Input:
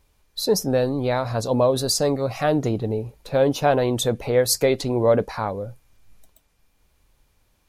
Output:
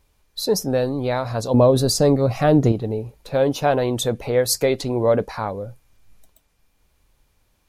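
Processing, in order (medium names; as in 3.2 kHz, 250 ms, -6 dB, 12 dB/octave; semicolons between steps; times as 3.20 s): 1.54–2.72 s: bass shelf 470 Hz +9 dB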